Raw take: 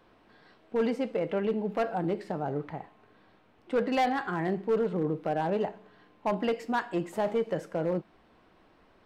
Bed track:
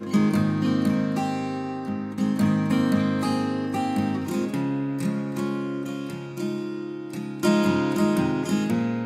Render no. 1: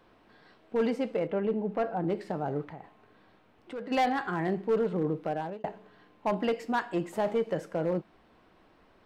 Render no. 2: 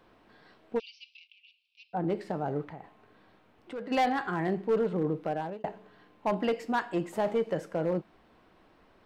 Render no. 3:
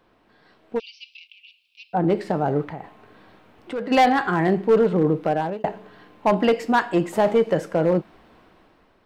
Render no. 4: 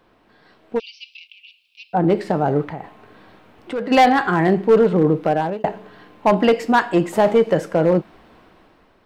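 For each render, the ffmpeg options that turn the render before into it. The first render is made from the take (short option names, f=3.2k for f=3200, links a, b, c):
-filter_complex "[0:a]asettb=1/sr,asplit=3[a][b][c];[a]atrim=end=1.274[d];[b]atrim=start=1.27:end=2.1,asetpts=PTS-STARTPTS,afade=t=in:d=0.004:c=qsin,afade=t=out:st=0.826:d=0.004:c=qsin,highshelf=f=2.5k:g=-11.5[e];[c]atrim=start=2.096[f];[d][e]acrossfade=d=0.004:c1=hsin:c2=qsin[g];[g][f]acrossfade=d=0.004:c1=qsin:c2=hsin,asplit=3[h][i][j];[h]afade=t=out:st=2.64:d=0.02[k];[i]acompressor=threshold=-41dB:ratio=2.5:attack=3.2:release=140:knee=1:detection=peak,afade=t=in:st=2.64:d=0.02,afade=t=out:st=3.9:d=0.02[l];[j]afade=t=in:st=3.9:d=0.02[m];[k][l][m]amix=inputs=3:normalize=0,asplit=2[n][o];[n]atrim=end=5.64,asetpts=PTS-STARTPTS,afade=t=out:st=5.07:d=0.57:c=qsin[p];[o]atrim=start=5.64,asetpts=PTS-STARTPTS,afade=t=in:d=0.004:c=hsin[q];[p][q]concat=n=2:v=0:a=1"
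-filter_complex "[0:a]asplit=3[a][b][c];[a]afade=t=out:st=0.78:d=0.02[d];[b]asuperpass=centerf=3800:order=20:qfactor=1.1,afade=t=in:st=0.78:d=0.02,afade=t=out:st=1.93:d=0.02[e];[c]afade=t=in:st=1.93:d=0.02[f];[d][e][f]amix=inputs=3:normalize=0"
-af "dynaudnorm=f=350:g=5:m=10dB"
-af "volume=3.5dB"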